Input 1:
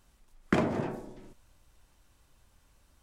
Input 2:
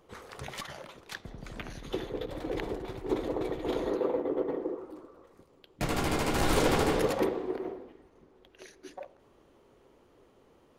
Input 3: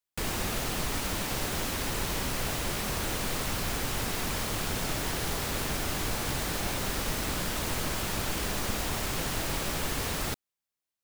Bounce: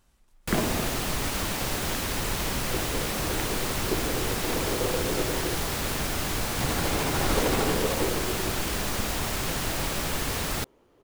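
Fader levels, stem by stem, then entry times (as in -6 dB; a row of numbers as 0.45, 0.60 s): -1.0, -0.5, +2.5 dB; 0.00, 0.80, 0.30 s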